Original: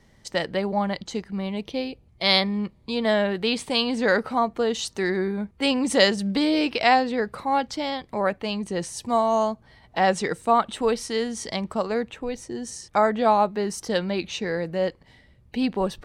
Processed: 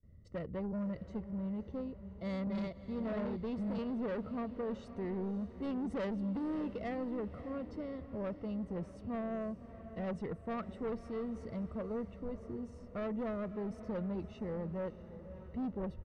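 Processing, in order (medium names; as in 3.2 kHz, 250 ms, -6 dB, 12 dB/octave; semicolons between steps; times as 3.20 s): 1.81–3.84 s: chunks repeated in reverse 658 ms, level -1 dB; gate with hold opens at -49 dBFS; boxcar filter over 54 samples; peaking EQ 76 Hz +10.5 dB 0.57 oct; comb 1.5 ms, depth 34%; saturation -28.5 dBFS, distortion -12 dB; echo that smears into a reverb 593 ms, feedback 53%, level -13 dB; trim -5 dB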